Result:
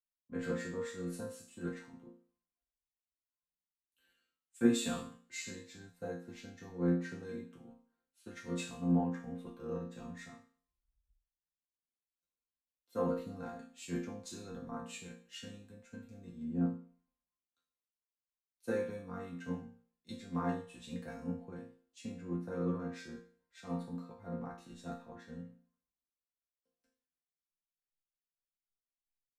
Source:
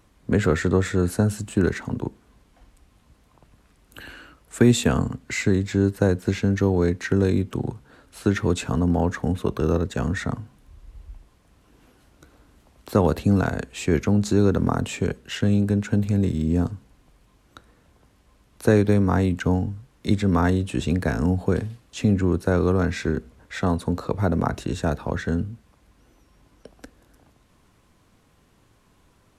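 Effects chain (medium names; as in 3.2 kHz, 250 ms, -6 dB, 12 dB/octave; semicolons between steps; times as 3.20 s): chord resonator F3 sus4, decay 0.61 s; three bands expanded up and down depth 100%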